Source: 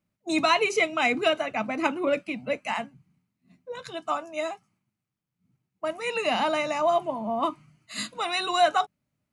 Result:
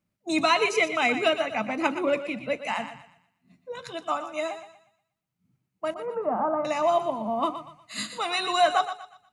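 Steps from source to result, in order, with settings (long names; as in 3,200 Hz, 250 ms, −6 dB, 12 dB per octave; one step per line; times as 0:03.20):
0:05.94–0:06.65: Chebyshev low-pass filter 1,300 Hz, order 4
feedback echo with a high-pass in the loop 120 ms, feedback 36%, high-pass 420 Hz, level −10 dB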